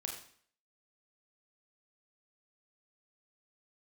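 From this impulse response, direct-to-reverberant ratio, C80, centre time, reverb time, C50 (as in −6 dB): 0.5 dB, 9.0 dB, 30 ms, 0.55 s, 5.5 dB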